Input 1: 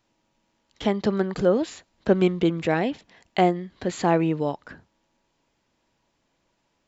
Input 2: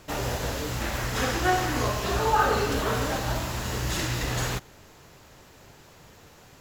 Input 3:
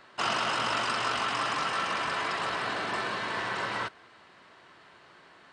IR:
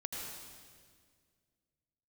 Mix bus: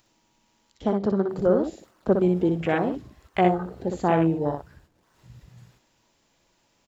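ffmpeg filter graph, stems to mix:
-filter_complex "[0:a]highshelf=f=4.4k:g=9,acompressor=mode=upward:threshold=-33dB:ratio=2.5,volume=-2dB,asplit=4[a][b][c][d];[b]volume=-21dB[e];[c]volume=-4.5dB[f];[1:a]bandreject=f=6.2k:w=12,adelay=1200,volume=-17dB,asplit=2[g][h];[h]volume=-18dB[i];[2:a]lowpass=1.9k,acrusher=samples=29:mix=1:aa=0.000001:lfo=1:lforange=46.4:lforate=2.2,adelay=1600,volume=-17.5dB[j];[d]apad=whole_len=344265[k];[g][k]sidechaingate=range=-33dB:threshold=-53dB:ratio=16:detection=peak[l];[3:a]atrim=start_sample=2205[m];[e][i]amix=inputs=2:normalize=0[n];[n][m]afir=irnorm=-1:irlink=0[o];[f]aecho=0:1:61|122|183:1|0.15|0.0225[p];[a][l][j][o][p]amix=inputs=5:normalize=0,afwtdn=0.0355"

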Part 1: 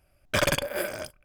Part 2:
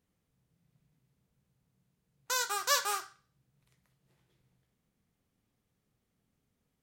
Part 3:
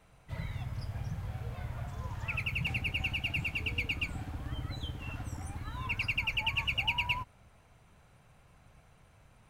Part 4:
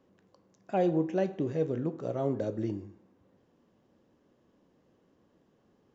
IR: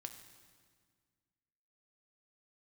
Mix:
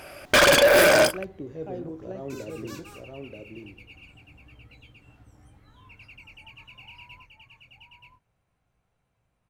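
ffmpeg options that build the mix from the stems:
-filter_complex "[0:a]asplit=2[a][b];[b]highpass=f=720:p=1,volume=34dB,asoftclip=type=tanh:threshold=-8.5dB[c];[a][c]amix=inputs=2:normalize=0,lowpass=f=4.5k:p=1,volume=-6dB,asoftclip=type=tanh:threshold=-13.5dB,volume=1.5dB[d];[1:a]volume=-17.5dB[e];[2:a]flanger=delay=16.5:depth=7.6:speed=0.22,volume=-13.5dB,asplit=2[f][g];[g]volume=-4.5dB[h];[3:a]volume=-9dB,asplit=2[i][j];[j]volume=-4dB[k];[h][k]amix=inputs=2:normalize=0,aecho=0:1:930:1[l];[d][e][f][i][l]amix=inputs=5:normalize=0,equalizer=f=360:w=1:g=3.5"

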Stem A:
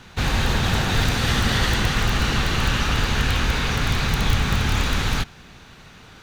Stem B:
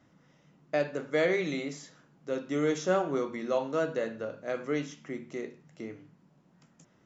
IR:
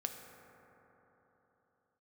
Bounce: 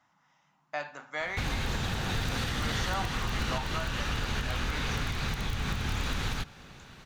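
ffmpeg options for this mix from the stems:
-filter_complex "[0:a]acompressor=threshold=-20dB:ratio=6,adelay=1200,volume=-6.5dB,asplit=2[a][b];[b]volume=-15.5dB[c];[1:a]lowshelf=f=630:t=q:w=3:g=-11,volume=-3dB,asplit=2[d][e];[e]volume=-18dB[f];[2:a]atrim=start_sample=2205[g];[c][f]amix=inputs=2:normalize=0[h];[h][g]afir=irnorm=-1:irlink=0[i];[a][d][i]amix=inputs=3:normalize=0,alimiter=limit=-20.5dB:level=0:latency=1:release=283"

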